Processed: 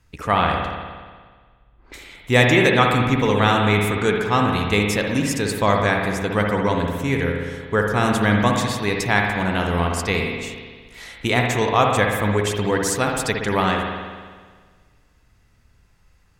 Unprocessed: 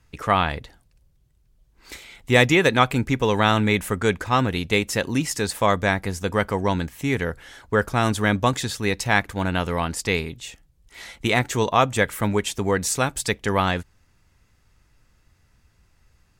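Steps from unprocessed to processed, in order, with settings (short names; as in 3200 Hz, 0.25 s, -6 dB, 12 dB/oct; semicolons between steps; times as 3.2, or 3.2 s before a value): 0.47–1.94 low-pass opened by the level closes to 750 Hz, open at -29.5 dBFS; spring tank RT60 1.6 s, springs 58 ms, chirp 30 ms, DRR 1 dB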